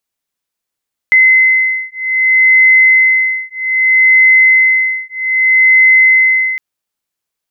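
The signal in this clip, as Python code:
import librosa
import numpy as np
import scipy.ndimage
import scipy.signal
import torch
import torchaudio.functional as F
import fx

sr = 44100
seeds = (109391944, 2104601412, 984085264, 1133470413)

y = fx.two_tone_beats(sr, length_s=5.46, hz=2050.0, beat_hz=0.63, level_db=-9.5)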